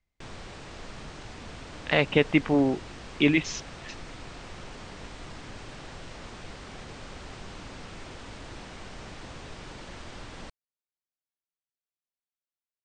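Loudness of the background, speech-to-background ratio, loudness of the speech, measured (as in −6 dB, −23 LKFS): −43.5 LKFS, 19.0 dB, −24.5 LKFS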